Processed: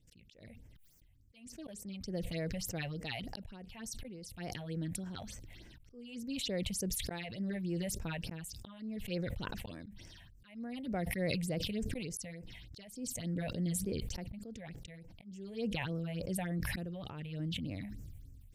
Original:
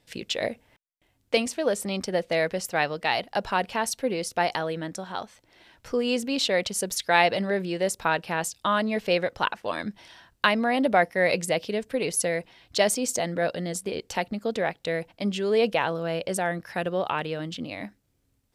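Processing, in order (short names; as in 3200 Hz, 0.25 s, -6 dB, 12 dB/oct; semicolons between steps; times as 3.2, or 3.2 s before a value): passive tone stack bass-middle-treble 10-0-1; auto swell 0.637 s; phaser stages 6, 3.4 Hz, lowest notch 330–3900 Hz; sustainer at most 21 dB/s; gain +12 dB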